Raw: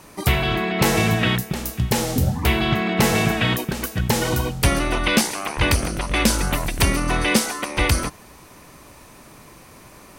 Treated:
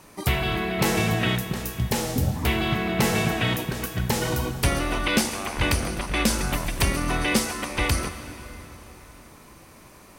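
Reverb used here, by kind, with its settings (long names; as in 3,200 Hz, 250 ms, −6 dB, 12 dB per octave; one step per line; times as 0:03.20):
dense smooth reverb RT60 4.1 s, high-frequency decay 0.75×, DRR 9.5 dB
level −4.5 dB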